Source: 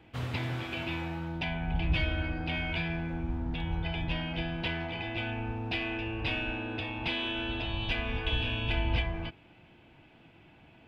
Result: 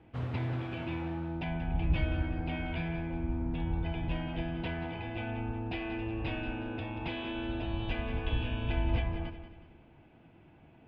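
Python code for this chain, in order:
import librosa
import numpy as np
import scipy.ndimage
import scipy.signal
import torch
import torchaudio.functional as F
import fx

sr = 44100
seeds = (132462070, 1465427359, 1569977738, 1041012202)

y = fx.lowpass(x, sr, hz=1000.0, slope=6)
y = fx.echo_feedback(y, sr, ms=184, feedback_pct=41, wet_db=-11.0)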